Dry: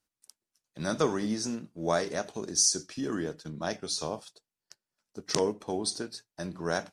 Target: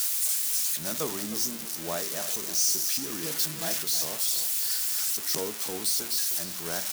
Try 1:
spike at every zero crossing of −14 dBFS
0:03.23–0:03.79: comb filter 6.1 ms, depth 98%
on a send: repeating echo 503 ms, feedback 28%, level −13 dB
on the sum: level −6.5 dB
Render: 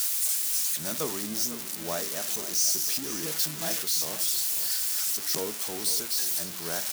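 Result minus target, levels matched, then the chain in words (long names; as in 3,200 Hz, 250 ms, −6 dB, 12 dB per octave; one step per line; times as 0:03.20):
echo 190 ms late
spike at every zero crossing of −14 dBFS
0:03.23–0:03.79: comb filter 6.1 ms, depth 98%
on a send: repeating echo 313 ms, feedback 28%, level −13 dB
on the sum: level −6.5 dB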